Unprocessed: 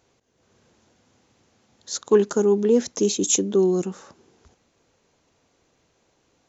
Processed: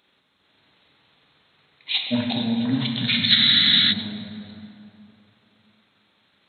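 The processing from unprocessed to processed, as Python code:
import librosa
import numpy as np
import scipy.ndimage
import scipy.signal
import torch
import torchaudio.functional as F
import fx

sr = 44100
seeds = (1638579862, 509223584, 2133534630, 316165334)

p1 = fx.pitch_heads(x, sr, semitones=-10.0)
p2 = scipy.signal.sosfilt(scipy.signal.butter(2, 98.0, 'highpass', fs=sr, output='sos'), p1)
p3 = fx.tilt_shelf(p2, sr, db=-7.0, hz=770.0)
p4 = p3 + fx.echo_single(p3, sr, ms=665, db=-19.5, dry=0)
p5 = fx.rev_plate(p4, sr, seeds[0], rt60_s=2.9, hf_ratio=0.55, predelay_ms=0, drr_db=0.0)
y = fx.spec_freeze(p5, sr, seeds[1], at_s=3.36, hold_s=0.56)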